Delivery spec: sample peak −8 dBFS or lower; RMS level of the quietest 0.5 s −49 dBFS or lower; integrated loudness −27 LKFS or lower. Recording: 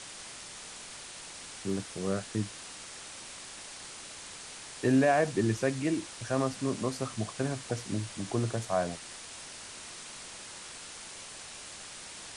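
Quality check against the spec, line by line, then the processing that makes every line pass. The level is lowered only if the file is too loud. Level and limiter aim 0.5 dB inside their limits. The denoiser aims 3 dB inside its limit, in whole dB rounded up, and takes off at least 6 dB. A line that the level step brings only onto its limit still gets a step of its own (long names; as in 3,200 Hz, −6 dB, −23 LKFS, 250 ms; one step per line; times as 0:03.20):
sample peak −13.5 dBFS: in spec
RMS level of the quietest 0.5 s −45 dBFS: out of spec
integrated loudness −34.0 LKFS: in spec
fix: broadband denoise 7 dB, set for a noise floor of −45 dBFS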